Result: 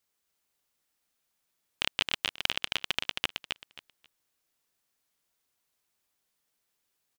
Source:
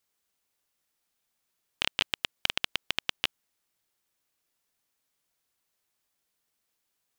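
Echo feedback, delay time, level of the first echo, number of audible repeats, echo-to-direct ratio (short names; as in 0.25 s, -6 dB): 20%, 0.268 s, -5.0 dB, 3, -5.0 dB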